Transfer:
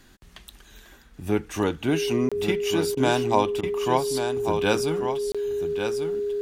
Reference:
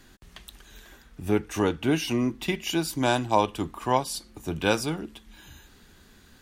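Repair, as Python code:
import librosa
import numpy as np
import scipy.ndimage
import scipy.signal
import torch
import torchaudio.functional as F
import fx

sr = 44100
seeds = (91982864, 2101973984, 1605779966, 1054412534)

y = fx.notch(x, sr, hz=410.0, q=30.0)
y = fx.fix_interpolate(y, sr, at_s=(2.29, 5.32), length_ms=26.0)
y = fx.fix_interpolate(y, sr, at_s=(2.95, 3.61), length_ms=20.0)
y = fx.fix_echo_inverse(y, sr, delay_ms=1142, level_db=-7.5)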